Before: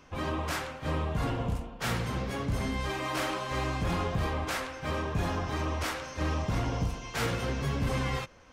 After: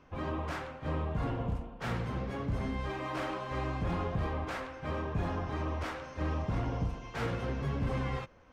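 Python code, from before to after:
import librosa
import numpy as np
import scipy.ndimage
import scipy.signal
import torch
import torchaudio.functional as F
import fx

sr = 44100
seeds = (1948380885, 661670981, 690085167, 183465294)

y = fx.lowpass(x, sr, hz=1600.0, slope=6)
y = y * 10.0 ** (-2.5 / 20.0)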